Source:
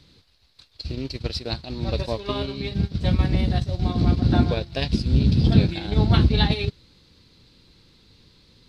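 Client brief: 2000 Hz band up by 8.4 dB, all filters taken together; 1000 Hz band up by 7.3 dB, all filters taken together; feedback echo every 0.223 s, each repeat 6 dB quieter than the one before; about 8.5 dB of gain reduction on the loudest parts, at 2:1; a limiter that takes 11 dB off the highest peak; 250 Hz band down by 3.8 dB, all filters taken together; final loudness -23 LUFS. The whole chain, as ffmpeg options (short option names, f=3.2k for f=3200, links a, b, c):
-af "equalizer=f=250:t=o:g=-6,equalizer=f=1k:t=o:g=8.5,equalizer=f=2k:t=o:g=8.5,acompressor=threshold=-27dB:ratio=2,alimiter=limit=-22.5dB:level=0:latency=1,aecho=1:1:223|446|669|892|1115|1338:0.501|0.251|0.125|0.0626|0.0313|0.0157,volume=8.5dB"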